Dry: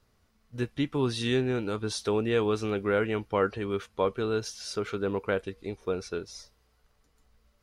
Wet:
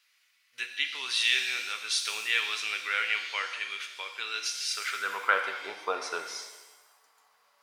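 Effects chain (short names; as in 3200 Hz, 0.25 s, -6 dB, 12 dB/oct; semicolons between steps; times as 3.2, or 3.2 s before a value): 3.41–4.17 compressor, threshold -26 dBFS, peak gain reduction 6 dB; high-pass sweep 2300 Hz -> 900 Hz, 4.67–5.58; shimmer reverb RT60 1.1 s, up +7 st, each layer -8 dB, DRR 5.5 dB; gain +4.5 dB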